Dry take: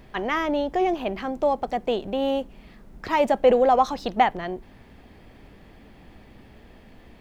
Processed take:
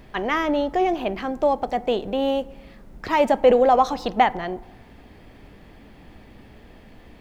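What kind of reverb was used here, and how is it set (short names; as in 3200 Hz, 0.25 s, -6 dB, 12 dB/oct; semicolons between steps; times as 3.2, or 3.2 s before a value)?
FDN reverb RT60 1.1 s, high-frequency decay 0.4×, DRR 17.5 dB; gain +2 dB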